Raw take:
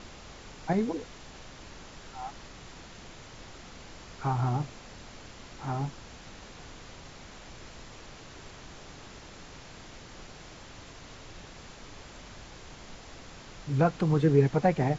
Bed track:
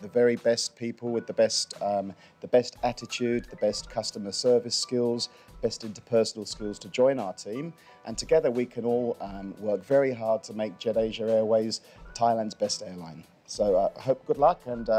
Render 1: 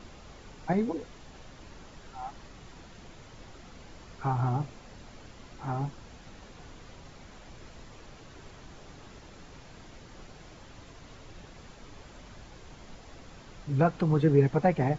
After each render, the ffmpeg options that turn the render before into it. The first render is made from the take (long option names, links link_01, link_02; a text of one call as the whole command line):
ffmpeg -i in.wav -af "afftdn=noise_reduction=6:noise_floor=-48" out.wav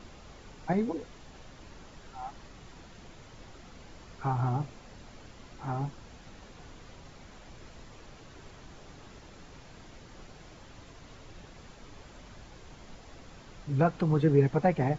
ffmpeg -i in.wav -af "volume=-1dB" out.wav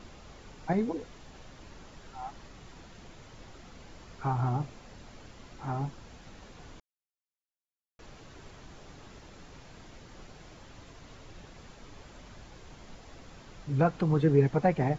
ffmpeg -i in.wav -filter_complex "[0:a]asplit=3[link_01][link_02][link_03];[link_01]atrim=end=6.8,asetpts=PTS-STARTPTS,afade=type=out:start_time=6.796:duration=0.004:curve=hsin[link_04];[link_02]atrim=start=6.8:end=7.99,asetpts=PTS-STARTPTS,volume=0[link_05];[link_03]atrim=start=7.99,asetpts=PTS-STARTPTS,afade=type=in:duration=0.004:curve=hsin[link_06];[link_04][link_05][link_06]concat=n=3:v=0:a=1" out.wav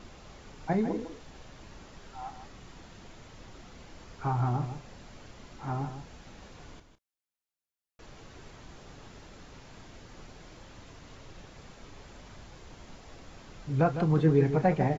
ffmpeg -i in.wav -filter_complex "[0:a]asplit=2[link_01][link_02];[link_02]adelay=32,volume=-13dB[link_03];[link_01][link_03]amix=inputs=2:normalize=0,aecho=1:1:155:0.316" out.wav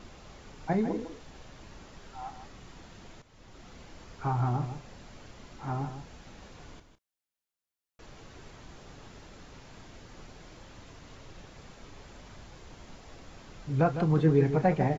ffmpeg -i in.wav -filter_complex "[0:a]asplit=2[link_01][link_02];[link_01]atrim=end=3.22,asetpts=PTS-STARTPTS,afade=type=out:start_time=3.216:duration=0.004:curve=hsin:silence=0.211349[link_03];[link_02]atrim=start=3.22,asetpts=PTS-STARTPTS,afade=type=in:duration=0.48:silence=0.211349[link_04];[link_03][link_04]concat=n=2:v=0:a=1" out.wav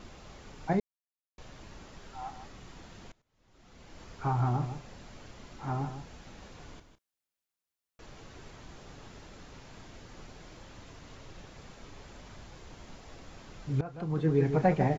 ffmpeg -i in.wav -filter_complex "[0:a]asplit=5[link_01][link_02][link_03][link_04][link_05];[link_01]atrim=end=0.8,asetpts=PTS-STARTPTS,afade=type=out:start_time=0.796:duration=0.004:curve=hsin[link_06];[link_02]atrim=start=0.8:end=1.38,asetpts=PTS-STARTPTS,volume=0[link_07];[link_03]atrim=start=1.38:end=3.12,asetpts=PTS-STARTPTS,afade=type=in:duration=0.004:curve=hsin,afade=type=out:start_time=1.736:duration=0.004:curve=hsin:silence=0.0749894[link_08];[link_04]atrim=start=3.12:end=13.81,asetpts=PTS-STARTPTS,afade=type=in:duration=0.9:curve=qua:silence=0.0749894,afade=type=out:start_time=10.686:duration=0.004:curve=hsin:silence=0.1[link_09];[link_05]atrim=start=13.81,asetpts=PTS-STARTPTS,afade=type=in:duration=0.81:silence=0.1[link_10];[link_06][link_07][link_08][link_09][link_10]concat=n=5:v=0:a=1" out.wav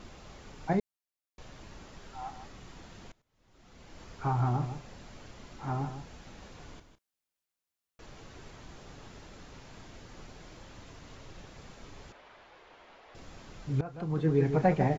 ffmpeg -i in.wav -filter_complex "[0:a]asettb=1/sr,asplit=3[link_01][link_02][link_03];[link_01]atrim=end=12.124[link_04];[link_02]atrim=start=12.12:end=13.15,asetpts=PTS-STARTPTS,afade=type=in:duration=0.004:curve=qsin,afade=type=out:start_time=1.026:duration=0.004:curve=qsin,acrossover=split=390 3700:gain=0.0891 1 0.1[link_05][link_06][link_07];[link_05][link_06][link_07]amix=inputs=3:normalize=0[link_08];[link_03]atrim=start=13.146[link_09];[link_04][link_08]acrossfade=duration=0.004:curve1=hsin:curve2=qsin[link_10];[link_10][link_09]acrossfade=duration=0.004:curve1=qsin:curve2=hsin" out.wav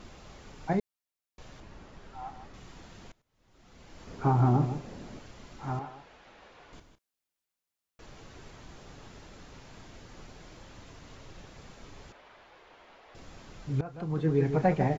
ffmpeg -i in.wav -filter_complex "[0:a]asettb=1/sr,asplit=3[link_01][link_02][link_03];[link_01]atrim=end=1.604[link_04];[link_02]atrim=start=1.6:end=2.54,asetpts=PTS-STARTPTS,afade=type=in:duration=0.004:curve=qsin,afade=type=out:start_time=0.936:duration=0.004:curve=qsin,highshelf=frequency=3700:gain=-9.5[link_05];[link_03]atrim=start=2.536[link_06];[link_04][link_05]acrossfade=duration=0.004:curve1=hsin:curve2=qsin[link_07];[link_07][link_06]acrossfade=duration=0.004:curve1=qsin:curve2=hsin,asettb=1/sr,asplit=3[link_08][link_09][link_10];[link_08]atrim=end=4.074[link_11];[link_09]atrim=start=4.07:end=5.19,asetpts=PTS-STARTPTS,afade=type=in:duration=0.004:curve=qsin,afade=type=out:start_time=1.116:duration=0.004:curve=qsin,equalizer=frequency=290:width=0.57:gain=10[link_12];[link_10]atrim=start=5.186[link_13];[link_11][link_12]acrossfade=duration=0.004:curve1=hsin:curve2=qsin[link_14];[link_14][link_13]acrossfade=duration=0.004:curve1=qsin:curve2=hsin,asettb=1/sr,asplit=3[link_15][link_16][link_17];[link_15]atrim=end=5.794[link_18];[link_16]atrim=start=5.79:end=6.73,asetpts=PTS-STARTPTS,afade=type=in:duration=0.004:curve=qsin,afade=type=out:start_time=0.936:duration=0.004:curve=qsin,acrossover=split=370 3900:gain=0.178 1 0.2[link_19][link_20][link_21];[link_19][link_20][link_21]amix=inputs=3:normalize=0[link_22];[link_17]atrim=start=6.726[link_23];[link_18][link_22]acrossfade=duration=0.004:curve1=hsin:curve2=qsin[link_24];[link_24][link_23]acrossfade=duration=0.004:curve1=qsin:curve2=hsin" out.wav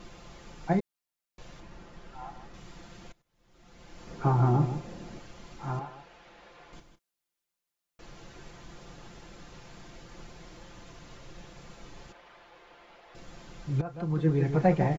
ffmpeg -i in.wav -af "aecho=1:1:5.8:0.49" out.wav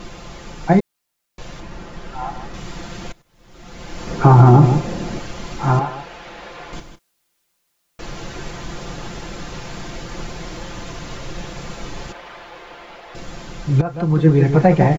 ffmpeg -i in.wav -af "dynaudnorm=framelen=220:gausssize=21:maxgain=4.5dB,alimiter=level_in=13dB:limit=-1dB:release=50:level=0:latency=1" out.wav